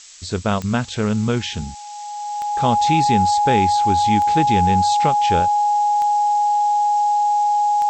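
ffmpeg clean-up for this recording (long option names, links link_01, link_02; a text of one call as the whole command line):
ffmpeg -i in.wav -af "adeclick=threshold=4,bandreject=frequency=830:width=30,afftdn=noise_reduction=30:noise_floor=-31" out.wav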